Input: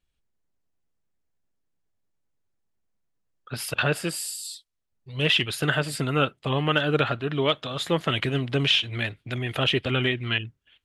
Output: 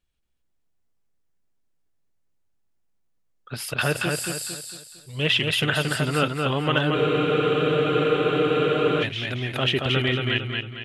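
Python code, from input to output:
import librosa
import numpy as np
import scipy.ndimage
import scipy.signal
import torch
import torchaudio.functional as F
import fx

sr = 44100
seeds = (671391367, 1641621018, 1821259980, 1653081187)

p1 = x + fx.echo_feedback(x, sr, ms=227, feedback_pct=40, wet_db=-3.5, dry=0)
y = fx.spec_freeze(p1, sr, seeds[0], at_s=6.96, hold_s=2.07)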